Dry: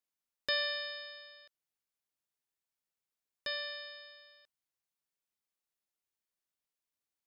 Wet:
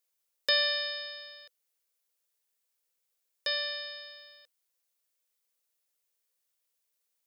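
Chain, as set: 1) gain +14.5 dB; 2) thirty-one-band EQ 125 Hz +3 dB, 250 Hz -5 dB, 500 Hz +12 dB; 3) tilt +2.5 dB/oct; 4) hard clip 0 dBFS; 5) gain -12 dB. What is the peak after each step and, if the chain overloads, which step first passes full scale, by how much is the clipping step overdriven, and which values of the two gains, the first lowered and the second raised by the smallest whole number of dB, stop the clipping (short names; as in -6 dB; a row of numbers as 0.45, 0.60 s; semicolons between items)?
-5.0, -4.5, -1.5, -1.5, -13.5 dBFS; no overload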